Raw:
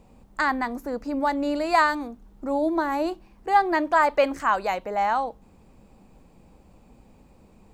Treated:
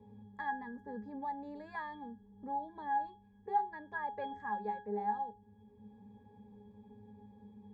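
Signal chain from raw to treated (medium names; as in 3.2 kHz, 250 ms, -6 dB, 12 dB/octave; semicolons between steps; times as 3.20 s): pitch-class resonator G#, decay 0.3 s; three bands compressed up and down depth 40%; trim +3 dB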